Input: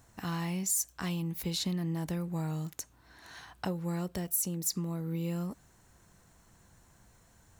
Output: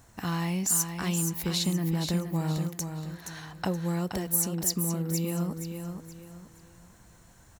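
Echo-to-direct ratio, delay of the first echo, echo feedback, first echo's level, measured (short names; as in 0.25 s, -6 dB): -6.5 dB, 0.473 s, 33%, -7.0 dB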